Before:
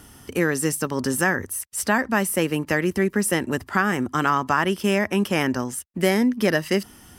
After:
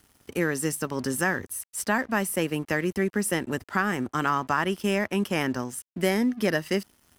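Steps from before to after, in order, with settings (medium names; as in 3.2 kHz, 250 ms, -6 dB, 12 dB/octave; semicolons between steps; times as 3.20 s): crossover distortion -45.5 dBFS; trim -4 dB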